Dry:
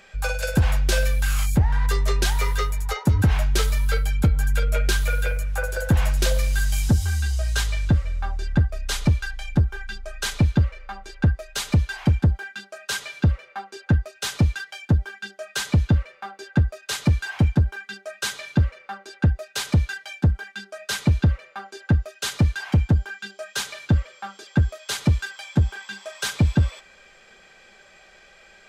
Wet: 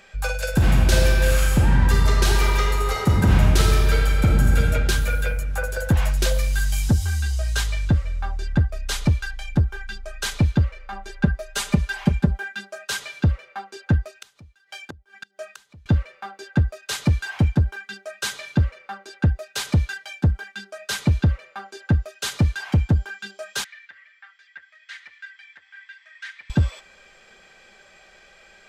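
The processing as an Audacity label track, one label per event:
0.510000	4.590000	reverb throw, RT60 2.8 s, DRR -2 dB
10.920000	12.840000	comb 5 ms, depth 72%
14.130000	15.860000	inverted gate shuts at -24 dBFS, range -29 dB
23.640000	26.500000	ladder band-pass 2 kHz, resonance 75%

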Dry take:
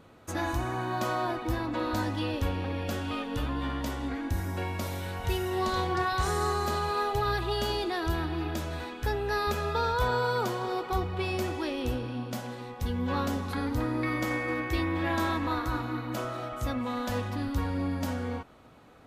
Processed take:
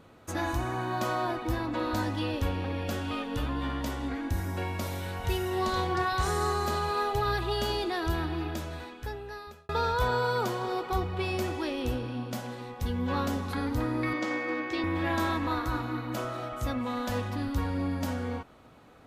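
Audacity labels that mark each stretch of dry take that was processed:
8.300000	9.690000	fade out
14.130000	14.840000	Chebyshev band-pass 270–5500 Hz

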